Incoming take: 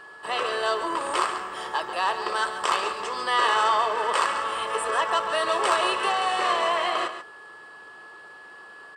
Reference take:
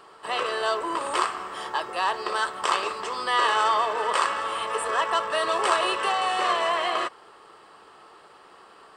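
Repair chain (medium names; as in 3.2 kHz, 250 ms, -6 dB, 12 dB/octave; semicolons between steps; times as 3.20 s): clip repair -11.5 dBFS; band-stop 1.7 kHz, Q 30; inverse comb 138 ms -10.5 dB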